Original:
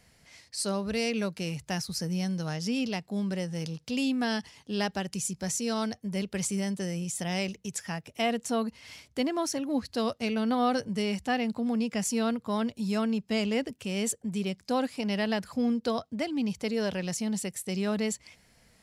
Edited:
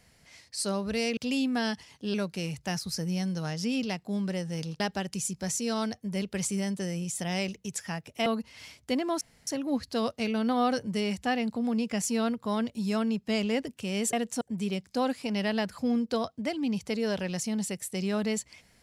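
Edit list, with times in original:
0:03.83–0:04.80: move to 0:01.17
0:08.26–0:08.54: move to 0:14.15
0:09.49: splice in room tone 0.26 s

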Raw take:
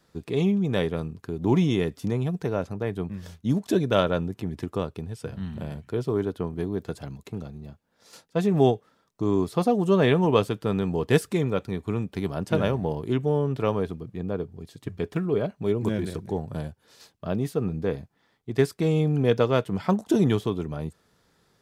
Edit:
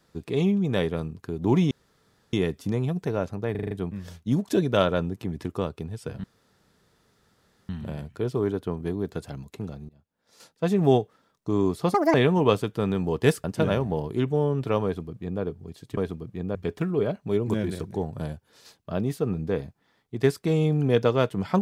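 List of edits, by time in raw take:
0:01.71: splice in room tone 0.62 s
0:02.89: stutter 0.04 s, 6 plays
0:05.42: splice in room tone 1.45 s
0:07.62–0:08.37: fade in linear, from −23.5 dB
0:09.67–0:10.01: play speed 169%
0:11.31–0:12.37: remove
0:13.77–0:14.35: duplicate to 0:14.90

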